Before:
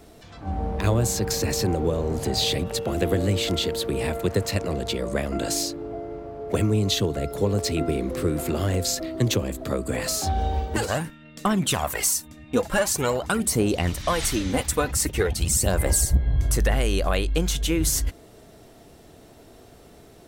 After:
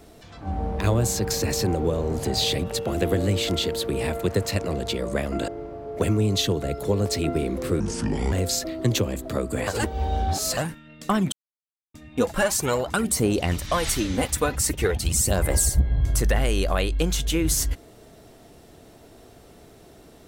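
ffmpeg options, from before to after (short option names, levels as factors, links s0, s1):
-filter_complex "[0:a]asplit=8[s0][s1][s2][s3][s4][s5][s6][s7];[s0]atrim=end=5.482[s8];[s1]atrim=start=6.008:end=8.334[s9];[s2]atrim=start=8.33:end=8.68,asetpts=PTS-STARTPTS,asetrate=29547,aresample=44100,atrim=end_sample=23037,asetpts=PTS-STARTPTS[s10];[s3]atrim=start=8.676:end=10.032[s11];[s4]atrim=start=10.028:end=10.932,asetpts=PTS-STARTPTS,areverse[s12];[s5]atrim=start=10.928:end=11.68,asetpts=PTS-STARTPTS,afade=t=out:st=0.748:d=0.004:c=hsin[s13];[s6]atrim=start=11.68:end=12.3,asetpts=PTS-STARTPTS,volume=0[s14];[s7]atrim=start=12.3,asetpts=PTS-STARTPTS,afade=t=in:d=0.004:c=hsin[s15];[s8][s9]acrossfade=d=0.004:c1=hsin:c2=hsin[s16];[s16][s10]acrossfade=d=0.004:c1=hsin:c2=hsin[s17];[s17][s11]acrossfade=d=0.004:c1=hsin:c2=hsin[s18];[s18][s12]acrossfade=d=0.004:c1=hsin:c2=hsin[s19];[s13][s14][s15]concat=n=3:v=0:a=1[s20];[s19][s20]acrossfade=d=0.004:c1=hsin:c2=hsin"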